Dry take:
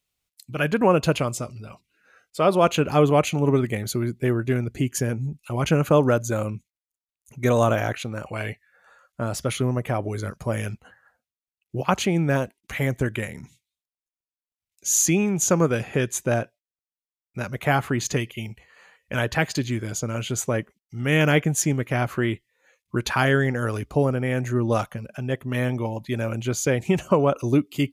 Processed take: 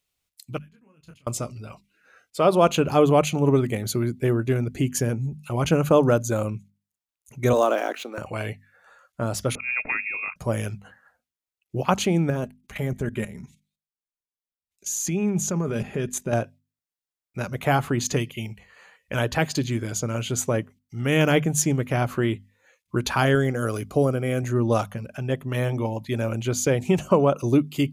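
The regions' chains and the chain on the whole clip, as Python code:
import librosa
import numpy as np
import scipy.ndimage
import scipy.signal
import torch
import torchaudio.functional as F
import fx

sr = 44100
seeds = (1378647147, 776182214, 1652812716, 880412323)

y = fx.chain(x, sr, fx.tone_stack(knobs='6-0-2'),
    fx.level_steps(step_db=18),
    fx.detune_double(cents=29), at=(0.58, 1.27))
y = fx.chain(y, sr, fx.median_filter(points=5),
    fx.steep_highpass(hz=270.0, slope=36), at=(7.53, 8.18))
y = fx.chain(y, sr, fx.auto_swell(attack_ms=116.0),
    fx.freq_invert(carrier_hz=2600), at=(9.55, 10.36))
y = fx.chain(y, sr, fx.level_steps(step_db=15),
    fx.low_shelf(hz=400.0, db=6.5),
    fx.comb(ms=4.9, depth=0.4), at=(12.3, 16.33))
y = fx.chain(y, sr, fx.high_shelf(hz=6700.0, db=7.0),
    fx.notch_comb(f0_hz=900.0), at=(23.35, 24.43))
y = fx.hum_notches(y, sr, base_hz=50, count=5)
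y = fx.dynamic_eq(y, sr, hz=1900.0, q=1.7, threshold_db=-40.0, ratio=4.0, max_db=-5)
y = y * 10.0 ** (1.0 / 20.0)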